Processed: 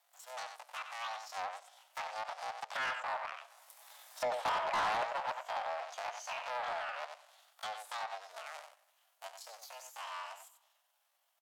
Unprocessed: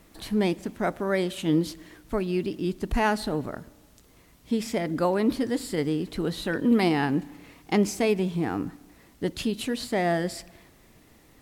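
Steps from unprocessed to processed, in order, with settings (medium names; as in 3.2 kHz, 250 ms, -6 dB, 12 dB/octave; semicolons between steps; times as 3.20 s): cycle switcher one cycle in 3, inverted; Doppler pass-by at 4.20 s, 23 m/s, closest 9.5 m; wow and flutter 23 cents; pitch shift +9 st; steep high-pass 640 Hz 48 dB/octave; echo from a far wall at 16 m, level -8 dB; low-pass that closes with the level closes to 2.1 kHz, closed at -37 dBFS; treble shelf 11 kHz +12 dB; saturation -33 dBFS, distortion -9 dB; trim +4 dB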